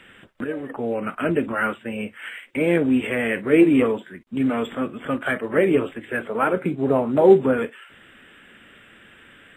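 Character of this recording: noise floor -50 dBFS; spectral tilt -3.0 dB/octave

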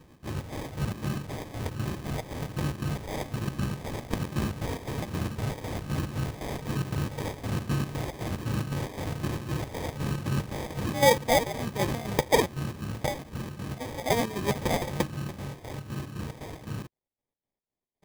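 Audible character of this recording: phasing stages 2, 1.2 Hz, lowest notch 200–2100 Hz; chopped level 3.9 Hz, depth 60%, duty 60%; aliases and images of a low sample rate 1.4 kHz, jitter 0%

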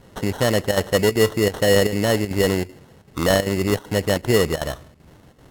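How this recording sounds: aliases and images of a low sample rate 2.4 kHz, jitter 0%; chopped level 2.6 Hz, depth 65%, duty 85%; SBC

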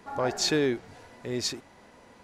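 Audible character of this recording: noise floor -55 dBFS; spectral tilt -3.5 dB/octave

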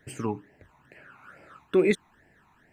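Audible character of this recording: phasing stages 12, 2.3 Hz, lowest notch 520–1200 Hz

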